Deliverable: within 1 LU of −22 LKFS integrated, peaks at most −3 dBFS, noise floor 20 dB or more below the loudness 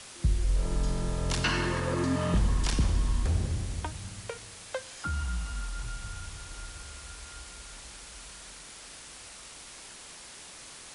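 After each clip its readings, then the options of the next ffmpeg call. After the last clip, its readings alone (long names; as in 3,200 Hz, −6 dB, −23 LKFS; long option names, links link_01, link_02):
background noise floor −47 dBFS; target noise floor −52 dBFS; integrated loudness −32.0 LKFS; sample peak −16.0 dBFS; target loudness −22.0 LKFS
→ -af "afftdn=noise_reduction=6:noise_floor=-47"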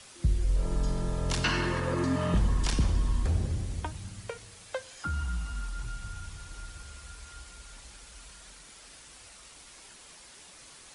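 background noise floor −52 dBFS; integrated loudness −31.5 LKFS; sample peak −16.0 dBFS; target loudness −22.0 LKFS
→ -af "volume=9.5dB"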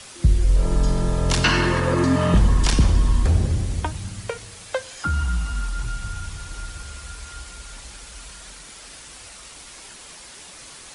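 integrated loudness −22.0 LKFS; sample peak −6.5 dBFS; background noise floor −42 dBFS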